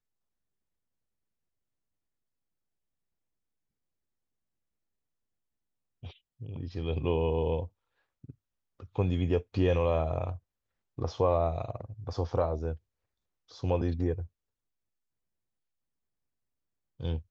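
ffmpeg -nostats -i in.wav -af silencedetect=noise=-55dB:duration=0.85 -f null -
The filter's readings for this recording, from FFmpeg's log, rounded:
silence_start: 0.00
silence_end: 6.03 | silence_duration: 6.03
silence_start: 14.27
silence_end: 16.99 | silence_duration: 2.72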